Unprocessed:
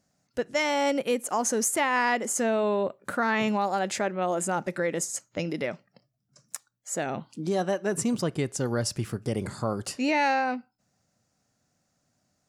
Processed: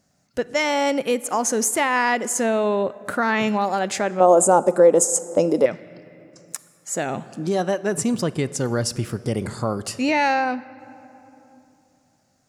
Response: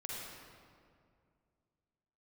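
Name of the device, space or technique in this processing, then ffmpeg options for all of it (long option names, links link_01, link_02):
ducked reverb: -filter_complex "[0:a]asplit=3[link_01][link_02][link_03];[1:a]atrim=start_sample=2205[link_04];[link_02][link_04]afir=irnorm=-1:irlink=0[link_05];[link_03]apad=whole_len=550633[link_06];[link_05][link_06]sidechaincompress=threshold=-33dB:ratio=8:attack=5.3:release=1190,volume=-5dB[link_07];[link_01][link_07]amix=inputs=2:normalize=0,asettb=1/sr,asplit=3[link_08][link_09][link_10];[link_08]atrim=end=4.204[link_11];[link_09]atrim=start=4.2:end=5.66,asetpts=PTS-STARTPTS,afade=type=in:duration=0.004:curve=qsin,afade=type=out:start_time=1.456:duration=0.004:curve=qsin,equalizer=frequency=125:width_type=o:width=1:gain=-6,equalizer=frequency=250:width_type=o:width=1:gain=4,equalizer=frequency=500:width_type=o:width=1:gain=10,equalizer=frequency=1000:width_type=o:width=1:gain=9,equalizer=frequency=2000:width_type=o:width=1:gain=-12,equalizer=frequency=4000:width_type=o:width=1:gain=-6,equalizer=frequency=8000:width_type=o:width=1:gain=10[link_12];[link_10]atrim=start=5.656[link_13];[link_11][link_12]acrossfade=duration=0.004:curve1=hsin:curve2=qsin[link_14];[link_14][link_13]acrossfade=duration=0.004:curve1=qsin:curve2=hsin,volume=4dB"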